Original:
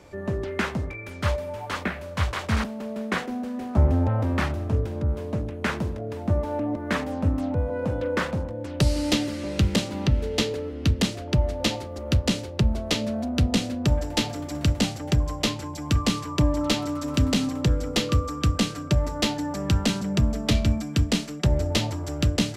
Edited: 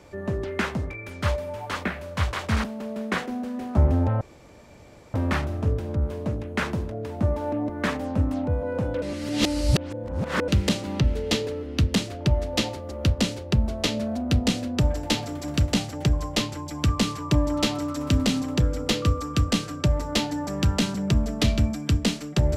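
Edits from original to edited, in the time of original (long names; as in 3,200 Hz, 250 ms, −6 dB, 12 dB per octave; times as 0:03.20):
0:04.21: splice in room tone 0.93 s
0:08.09–0:09.55: reverse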